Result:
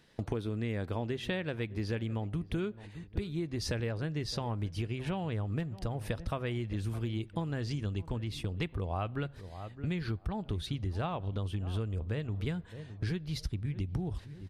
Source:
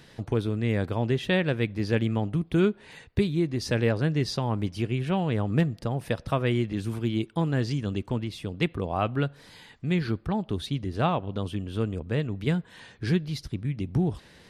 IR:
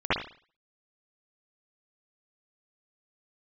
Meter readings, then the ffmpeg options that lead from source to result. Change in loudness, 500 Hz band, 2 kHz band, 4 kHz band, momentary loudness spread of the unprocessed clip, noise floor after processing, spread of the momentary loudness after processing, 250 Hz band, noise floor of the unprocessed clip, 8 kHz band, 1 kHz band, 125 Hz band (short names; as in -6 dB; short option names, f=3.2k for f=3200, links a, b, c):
-8.0 dB, -9.5 dB, -9.0 dB, -6.5 dB, 7 LU, -52 dBFS, 3 LU, -9.5 dB, -54 dBFS, -4.0 dB, -8.5 dB, -6.5 dB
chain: -filter_complex "[0:a]agate=range=-14dB:threshold=-41dB:ratio=16:detection=peak,equalizer=f=130:w=7.9:g=-7.5,asplit=2[a][b];[b]adelay=614,lowpass=f=1.1k:p=1,volume=-19.5dB,asplit=2[c][d];[d]adelay=614,lowpass=f=1.1k:p=1,volume=0.32,asplit=2[e][f];[f]adelay=614,lowpass=f=1.1k:p=1,volume=0.32[g];[c][e][g]amix=inputs=3:normalize=0[h];[a][h]amix=inputs=2:normalize=0,asubboost=boost=4:cutoff=98,acompressor=threshold=-34dB:ratio=6,volume=2.5dB"